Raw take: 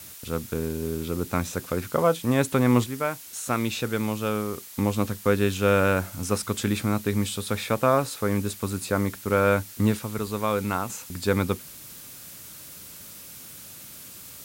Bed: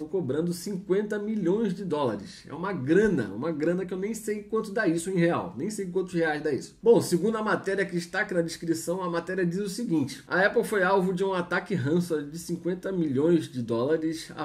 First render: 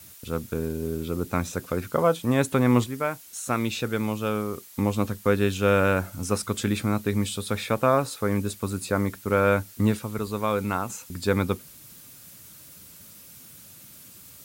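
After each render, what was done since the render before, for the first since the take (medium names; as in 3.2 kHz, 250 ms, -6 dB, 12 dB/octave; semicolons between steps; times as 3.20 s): noise reduction 6 dB, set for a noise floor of -44 dBFS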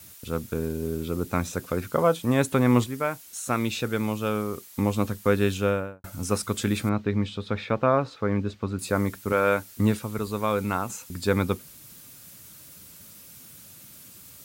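5.50–6.04 s: studio fade out; 6.89–8.79 s: distance through air 210 m; 9.32–9.72 s: high-pass 290 Hz 6 dB/octave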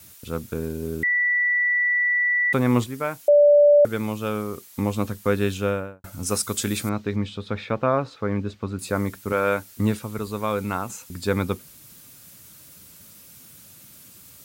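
1.03–2.53 s: bleep 1.96 kHz -18 dBFS; 3.28–3.85 s: bleep 584 Hz -10.5 dBFS; 6.26–7.16 s: tone controls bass -2 dB, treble +8 dB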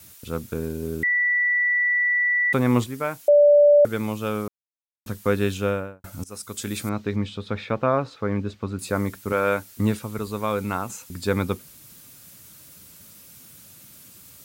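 4.48–5.06 s: mute; 6.24–7.03 s: fade in, from -21 dB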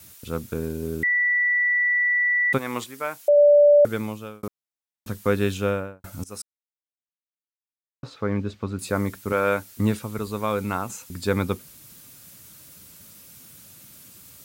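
2.57–3.36 s: high-pass 1.4 kHz -> 350 Hz 6 dB/octave; 3.92–4.43 s: fade out; 6.42–8.03 s: mute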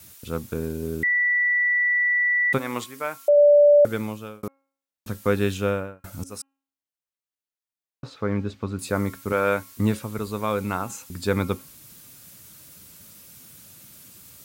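de-hum 272.3 Hz, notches 11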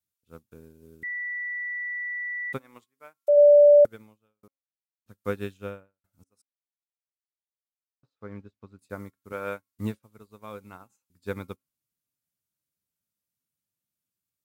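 upward expansion 2.5:1, over -41 dBFS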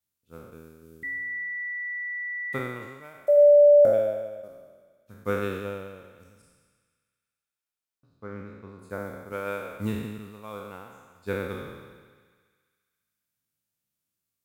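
spectral sustain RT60 1.39 s; thinning echo 68 ms, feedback 84%, high-pass 410 Hz, level -18 dB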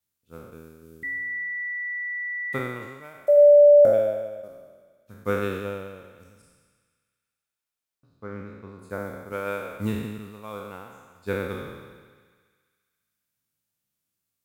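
trim +2 dB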